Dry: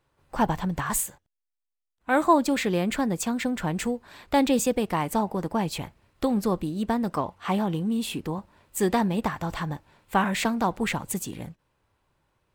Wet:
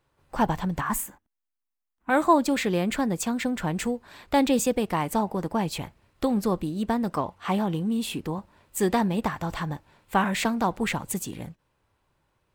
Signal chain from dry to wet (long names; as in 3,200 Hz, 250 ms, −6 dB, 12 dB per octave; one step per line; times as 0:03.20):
0:00.81–0:02.10: octave-band graphic EQ 125/250/500/1,000/4,000/8,000 Hz −11/+10/−7/+4/−8/−5 dB